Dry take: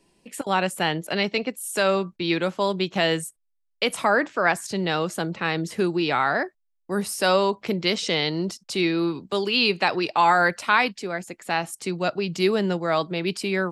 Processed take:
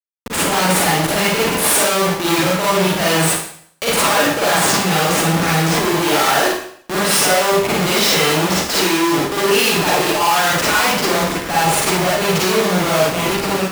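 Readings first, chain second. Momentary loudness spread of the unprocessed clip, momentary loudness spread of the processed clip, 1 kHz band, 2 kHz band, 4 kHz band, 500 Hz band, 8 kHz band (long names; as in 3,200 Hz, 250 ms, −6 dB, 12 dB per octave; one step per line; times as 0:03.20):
8 LU, 5 LU, +7.5 dB, +7.5 dB, +10.0 dB, +7.0 dB, +18.5 dB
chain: fade-out on the ending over 1.02 s
comparator with hysteresis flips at −35.5 dBFS
high-pass filter 280 Hz 6 dB per octave
four-comb reverb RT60 0.6 s, DRR −6 dB
level +4 dB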